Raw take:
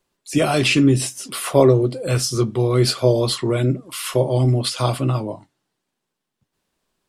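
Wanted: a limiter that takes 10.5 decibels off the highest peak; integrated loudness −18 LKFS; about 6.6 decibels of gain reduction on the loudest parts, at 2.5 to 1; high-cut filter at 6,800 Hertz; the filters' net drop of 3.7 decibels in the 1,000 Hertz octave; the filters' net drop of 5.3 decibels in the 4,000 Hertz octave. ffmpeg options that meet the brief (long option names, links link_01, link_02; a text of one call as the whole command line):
ffmpeg -i in.wav -af "lowpass=6800,equalizer=frequency=1000:width_type=o:gain=-5,equalizer=frequency=4000:width_type=o:gain=-6,acompressor=threshold=-19dB:ratio=2.5,volume=9.5dB,alimiter=limit=-8.5dB:level=0:latency=1" out.wav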